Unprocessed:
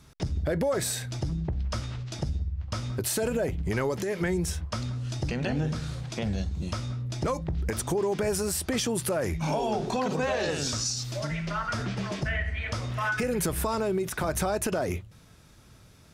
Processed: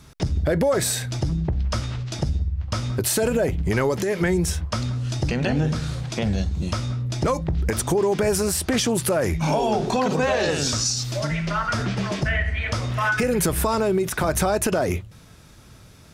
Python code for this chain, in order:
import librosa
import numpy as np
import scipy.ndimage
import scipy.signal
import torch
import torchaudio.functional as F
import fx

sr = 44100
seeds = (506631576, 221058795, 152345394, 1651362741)

y = fx.doppler_dist(x, sr, depth_ms=0.12, at=(8.37, 9.03))
y = F.gain(torch.from_numpy(y), 6.5).numpy()